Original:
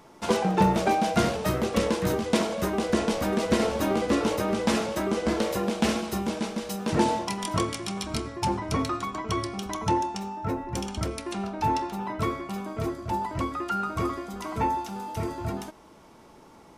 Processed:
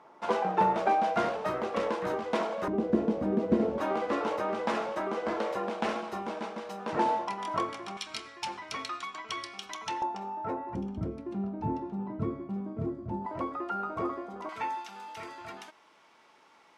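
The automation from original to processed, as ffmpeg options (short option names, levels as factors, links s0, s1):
-af "asetnsamples=n=441:p=0,asendcmd='2.68 bandpass f 280;3.78 bandpass f 970;7.97 bandpass f 2800;10.02 bandpass f 770;10.75 bandpass f 200;13.26 bandpass f 630;14.49 bandpass f 2300',bandpass=f=950:t=q:w=0.89:csg=0"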